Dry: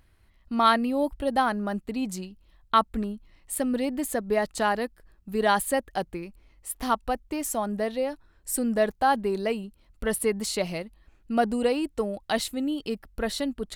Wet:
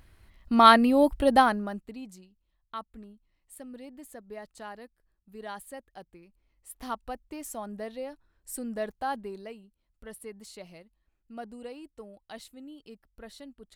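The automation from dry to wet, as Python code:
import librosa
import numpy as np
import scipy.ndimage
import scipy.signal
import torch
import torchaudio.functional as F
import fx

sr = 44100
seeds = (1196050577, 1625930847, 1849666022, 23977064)

y = fx.gain(x, sr, db=fx.line((1.38, 4.5), (1.68, -5.0), (2.24, -17.5), (6.22, -17.5), (6.84, -9.5), (9.15, -9.5), (9.61, -17.5)))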